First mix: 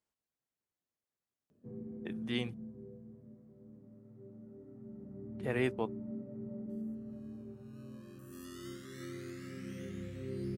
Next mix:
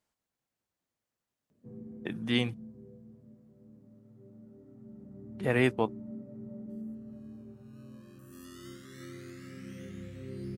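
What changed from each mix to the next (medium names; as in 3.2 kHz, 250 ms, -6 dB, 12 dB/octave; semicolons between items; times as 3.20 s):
speech +8.0 dB; master: add peaking EQ 390 Hz -3.5 dB 0.39 oct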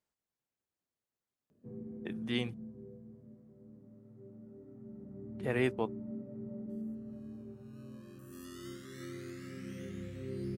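speech -6.5 dB; master: add peaking EQ 390 Hz +3.5 dB 0.39 oct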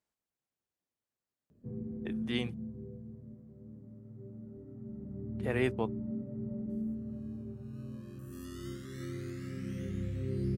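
background: remove high-pass 300 Hz 6 dB/octave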